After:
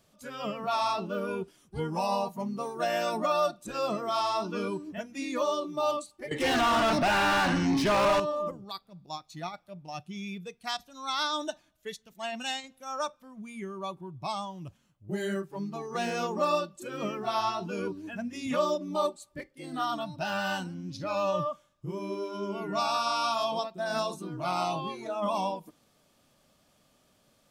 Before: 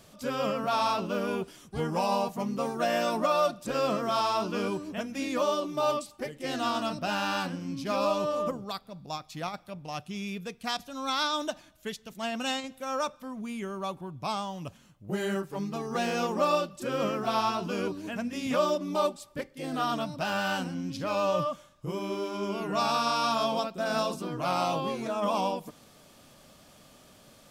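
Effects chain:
0:06.31–0:08.20: mid-hump overdrive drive 34 dB, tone 2,100 Hz, clips at −16 dBFS
noise reduction from a noise print of the clip's start 10 dB
level −1 dB

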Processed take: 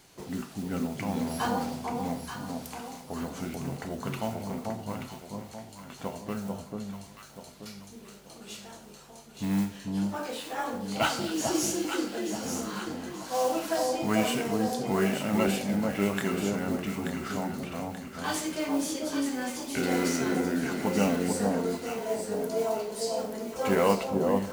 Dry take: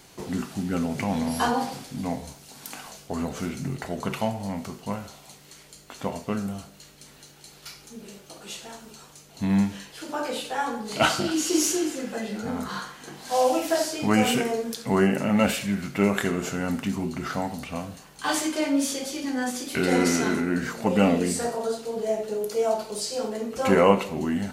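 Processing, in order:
noise that follows the level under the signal 21 dB
pitch-shifted copies added +7 semitones −17 dB
delay that swaps between a low-pass and a high-pass 441 ms, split 980 Hz, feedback 62%, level −2.5 dB
level −6 dB

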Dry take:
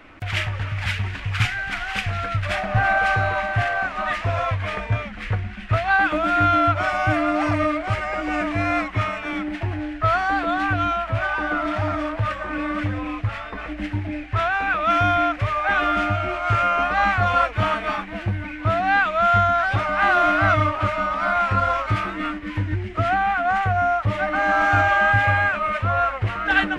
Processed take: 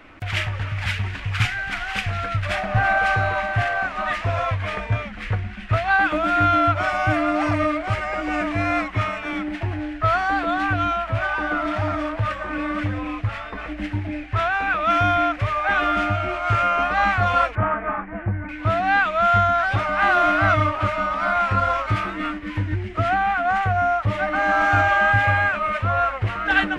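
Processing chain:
0:17.55–0:18.49: inverse Chebyshev low-pass filter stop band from 6,000 Hz, stop band 60 dB

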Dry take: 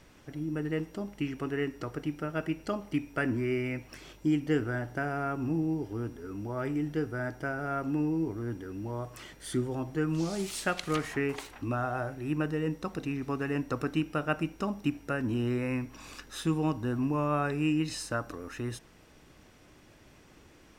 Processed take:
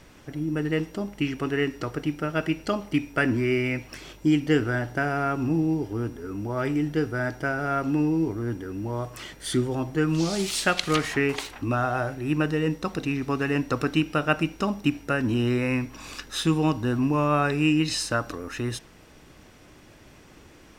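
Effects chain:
dynamic equaliser 3,900 Hz, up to +6 dB, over −51 dBFS, Q 0.76
level +6 dB

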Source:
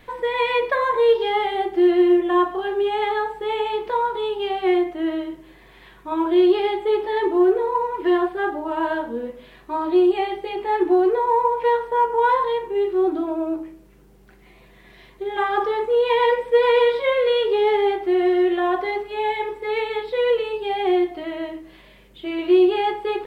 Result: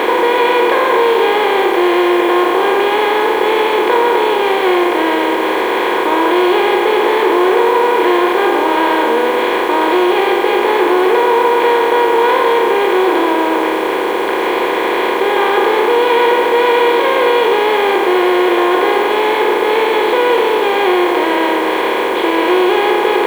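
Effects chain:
compressor on every frequency bin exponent 0.2
low-shelf EQ 130 Hz −3 dB
in parallel at 0 dB: brickwall limiter −6 dBFS, peak gain reduction 7 dB
on the sum: bit reduction 5 bits
level −5.5 dB

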